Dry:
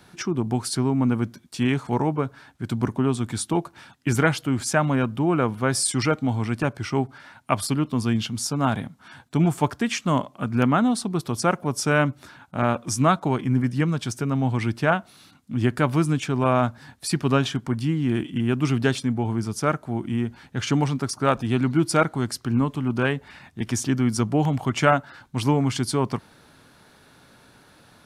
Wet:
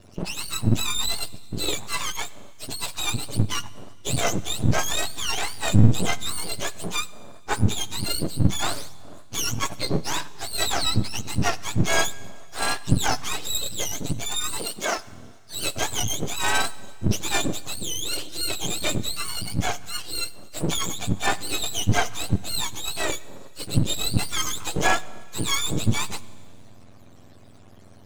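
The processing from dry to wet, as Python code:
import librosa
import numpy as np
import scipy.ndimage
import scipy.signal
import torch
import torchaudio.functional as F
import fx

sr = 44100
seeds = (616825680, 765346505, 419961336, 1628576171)

y = fx.octave_mirror(x, sr, pivot_hz=990.0)
y = np.maximum(y, 0.0)
y = fx.highpass(y, sr, hz=200.0, slope=12, at=(14.58, 14.98))
y = fx.rev_schroeder(y, sr, rt60_s=1.9, comb_ms=30, drr_db=19.0)
y = y * librosa.db_to_amplitude(3.5)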